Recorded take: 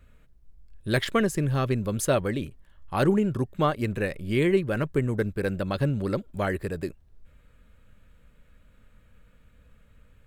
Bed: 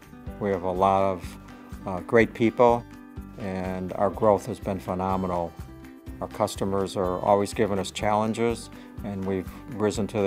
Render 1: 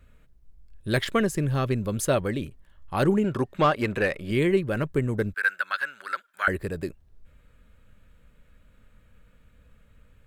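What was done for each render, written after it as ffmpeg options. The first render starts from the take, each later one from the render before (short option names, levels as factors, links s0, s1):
-filter_complex "[0:a]asettb=1/sr,asplit=3[s0][s1][s2];[s0]atrim=end=3.244[s3];[s1]atrim=start=3.24:end=4.31,asetpts=PTS-STARTPTS,afade=t=in:d=0.004:c=qsin,afade=t=out:st=1.066:d=0.004:c=qsin,asplit=2[s4][s5];[s5]highpass=f=720:p=1,volume=5.62,asoftclip=type=tanh:threshold=0.299[s6];[s4][s6]amix=inputs=2:normalize=0,lowpass=f=3000:p=1,volume=0.501[s7];[s2]atrim=start=4.306[s8];[s3][s7]acrossfade=d=0.004:c1=hsin:c2=qsin[s9];[s9][s8]acrossfade=d=0.004:c1=qsin:c2=hsin,asettb=1/sr,asplit=3[s10][s11][s12];[s10]atrim=end=5.344[s13];[s11]atrim=start=5.34:end=6.48,asetpts=PTS-STARTPTS,afade=t=in:d=0.004:c=qsin,afade=t=out:st=1.136:d=0.004:c=qsin,highpass=f=1500:t=q:w=6.2[s14];[s12]atrim=start=6.476[s15];[s13][s14]acrossfade=d=0.004:c1=hsin:c2=qsin[s16];[s16][s15]acrossfade=d=0.004:c1=qsin:c2=hsin"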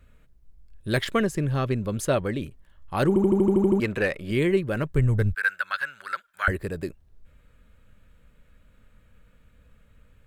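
-filter_complex "[0:a]asettb=1/sr,asplit=3[s0][s1][s2];[s0]atrim=end=1.244[s3];[s1]atrim=start=1.24:end=2.41,asetpts=PTS-STARTPTS,afade=t=in:d=0.004:c=qsin,afade=t=out:st=1.166:d=0.004:c=qsin,highshelf=f=7300:g=-6[s4];[s2]atrim=start=2.406[s5];[s3][s4]acrossfade=d=0.004:c1=hsin:c2=qsin[s6];[s6][s5]acrossfade=d=0.004:c1=qsin:c2=hsin,asplit=3[s7][s8][s9];[s7]afade=t=out:st=4.94:d=0.02[s10];[s8]asubboost=boost=8:cutoff=97,afade=t=in:st=4.94:d=0.02,afade=t=out:st=6.5:d=0.02[s11];[s9]afade=t=in:st=6.5:d=0.02[s12];[s10][s11][s12]amix=inputs=3:normalize=0,asplit=10[s13][s14][s15][s16][s17][s18][s19][s20][s21][s22];[s13]atrim=end=3.162[s23];[s14]atrim=start=3.078:end=3.162[s24];[s15]atrim=start=3.078:end=3.162[s25];[s16]atrim=start=3.078:end=3.162[s26];[s17]atrim=start=3.078:end=3.162[s27];[s18]atrim=start=3.078:end=3.162[s28];[s19]atrim=start=3.078:end=3.162[s29];[s20]atrim=start=3.078:end=3.162[s30];[s21]atrim=start=3.078:end=3.162[s31];[s22]atrim=start=3.798[s32];[s23][s24]acrossfade=d=0.004:c1=hsin:c2=hsin[s33];[s33][s25]acrossfade=d=0.004:c1=hsin:c2=hsin[s34];[s34][s26]acrossfade=d=0.004:c1=hsin:c2=hsin[s35];[s35][s27]acrossfade=d=0.004:c1=hsin:c2=hsin[s36];[s36][s28]acrossfade=d=0.004:c1=hsin:c2=hsin[s37];[s37][s29]acrossfade=d=0.004:c1=hsin:c2=hsin[s38];[s38][s30]acrossfade=d=0.004:c1=hsin:c2=hsin[s39];[s39][s31]acrossfade=d=0.004:c1=hsin:c2=hsin[s40];[s40][s32]acrossfade=d=0.004:c1=hsin:c2=hsin"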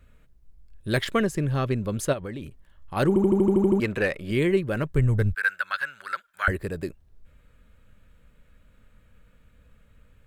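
-filter_complex "[0:a]asplit=3[s0][s1][s2];[s0]afade=t=out:st=2.12:d=0.02[s3];[s1]acompressor=threshold=0.0282:ratio=4:attack=3.2:release=140:knee=1:detection=peak,afade=t=in:st=2.12:d=0.02,afade=t=out:st=2.95:d=0.02[s4];[s2]afade=t=in:st=2.95:d=0.02[s5];[s3][s4][s5]amix=inputs=3:normalize=0"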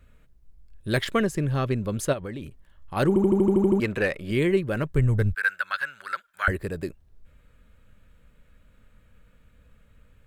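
-af anull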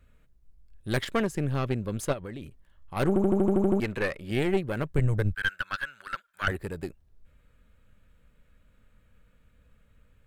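-af "aeval=exprs='(tanh(6.31*val(0)+0.75)-tanh(0.75))/6.31':c=same"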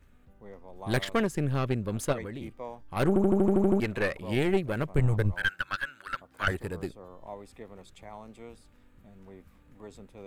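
-filter_complex "[1:a]volume=0.0794[s0];[0:a][s0]amix=inputs=2:normalize=0"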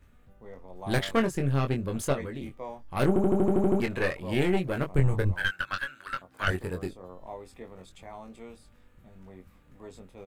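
-filter_complex "[0:a]asplit=2[s0][s1];[s1]adelay=22,volume=0.531[s2];[s0][s2]amix=inputs=2:normalize=0"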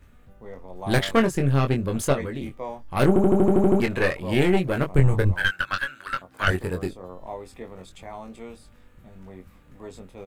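-af "volume=1.88"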